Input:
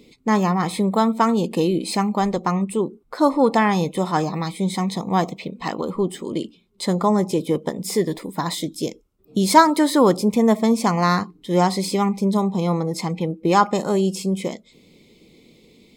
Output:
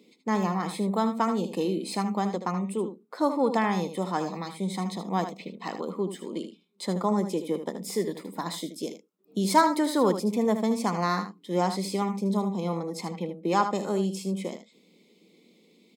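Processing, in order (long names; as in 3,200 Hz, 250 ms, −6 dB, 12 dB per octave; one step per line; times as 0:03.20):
Chebyshev high-pass filter 180 Hz, order 4
on a send: single-tap delay 77 ms −9.5 dB
on the sum: level −7.5 dB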